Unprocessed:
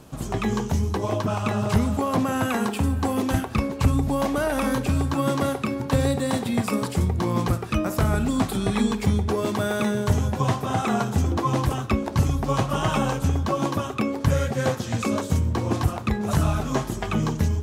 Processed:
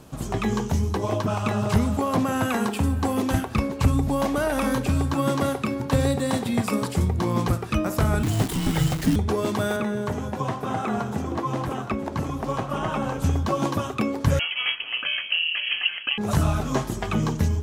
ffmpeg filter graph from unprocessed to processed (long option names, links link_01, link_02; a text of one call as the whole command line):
ffmpeg -i in.wav -filter_complex "[0:a]asettb=1/sr,asplit=3[link_01][link_02][link_03];[link_01]atrim=end=8.234[link_04];[link_02]atrim=start=8.23:end=9.16,asetpts=PTS-STARTPTS,afade=type=in:duration=0.004:curve=qsin,afade=type=out:start_time=0.926:duration=0.004:curve=qsin,acrusher=bits=6:dc=4:mix=0:aa=0.000001,afreqshift=-370[link_05];[link_03]atrim=start=9.156[link_06];[link_04][link_05]acrossfade=duration=0.004:curve1=hsin:curve2=qsin[link_07];[link_07][link_06]acrossfade=duration=0.004:curve1=qsin:curve2=hsin,asettb=1/sr,asplit=3[link_08][link_09][link_10];[link_08]atrim=end=9.764[link_11];[link_09]atrim=start=9.76:end=13.19,asetpts=PTS-STARTPTS,afade=type=in:duration=0.004:curve=qsin,afade=type=out:start_time=3.426:duration=0.004:curve=qsin,acrossover=split=170|2500[link_12][link_13][link_14];[link_12]acompressor=threshold=-36dB:ratio=4[link_15];[link_13]acompressor=threshold=-24dB:ratio=4[link_16];[link_14]acompressor=threshold=-49dB:ratio=4[link_17];[link_15][link_16][link_17]amix=inputs=3:normalize=0,aecho=1:1:868:0.251,atrim=end_sample=151263[link_18];[link_10]atrim=start=13.186[link_19];[link_11][link_18]acrossfade=duration=0.004:curve1=hsin:curve2=qsin[link_20];[link_20][link_19]acrossfade=duration=0.004:curve1=qsin:curve2=hsin,asettb=1/sr,asplit=3[link_21][link_22][link_23];[link_21]atrim=end=14.394[link_24];[link_22]atrim=start=14.39:end=16.18,asetpts=PTS-STARTPTS,afade=type=in:duration=0.004:curve=qsin,afade=type=out:start_time=1.786:duration=0.004:curve=qsin,aeval=exprs='val(0)*sin(2*PI*490*n/s)':channel_layout=same,lowpass=frequency=2800:width_type=q:width=0.5098,lowpass=frequency=2800:width_type=q:width=0.6013,lowpass=frequency=2800:width_type=q:width=0.9,lowpass=frequency=2800:width_type=q:width=2.563,afreqshift=-3300[link_25];[link_23]atrim=start=16.176[link_26];[link_24][link_25]acrossfade=duration=0.004:curve1=hsin:curve2=qsin[link_27];[link_27][link_26]acrossfade=duration=0.004:curve1=qsin:curve2=hsin" out.wav